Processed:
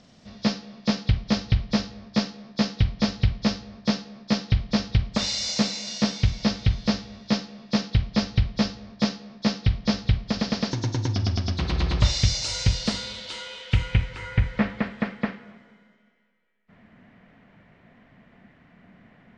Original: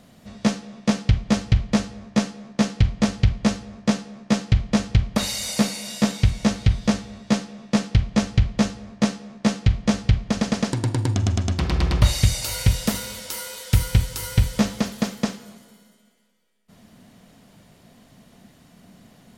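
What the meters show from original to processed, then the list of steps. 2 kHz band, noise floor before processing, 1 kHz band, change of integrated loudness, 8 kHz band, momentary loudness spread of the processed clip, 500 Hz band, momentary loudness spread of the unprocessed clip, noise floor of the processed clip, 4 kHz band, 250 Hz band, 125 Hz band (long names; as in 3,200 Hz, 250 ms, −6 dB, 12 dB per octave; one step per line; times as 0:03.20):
−1.5 dB, −54 dBFS, −3.0 dB, −3.0 dB, −5.5 dB, 5 LU, −3.5 dB, 5 LU, −57 dBFS, +1.5 dB, −3.5 dB, −3.5 dB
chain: hearing-aid frequency compression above 3,300 Hz 1.5 to 1
low-pass filter sweep 5,400 Hz → 2,000 Hz, 0:12.63–0:14.31
level −3.5 dB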